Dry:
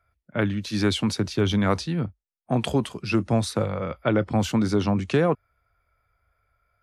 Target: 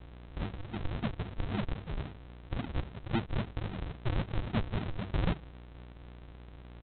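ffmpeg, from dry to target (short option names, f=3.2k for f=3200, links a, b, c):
-af "equalizer=f=300:t=o:w=0.3:g=-9,bandreject=f=50:t=h:w=6,bandreject=f=100:t=h:w=6,bandreject=f=150:t=h:w=6,bandreject=f=200:t=h:w=6,bandreject=f=250:t=h:w=6,bandreject=f=300:t=h:w=6,aeval=exprs='val(0)+0.0112*(sin(2*PI*60*n/s)+sin(2*PI*2*60*n/s)/2+sin(2*PI*3*60*n/s)/3+sin(2*PI*4*60*n/s)/4+sin(2*PI*5*60*n/s)/5)':c=same,aresample=8000,acrusher=samples=27:mix=1:aa=0.000001:lfo=1:lforange=27:lforate=3.7,aresample=44100,volume=-8.5dB"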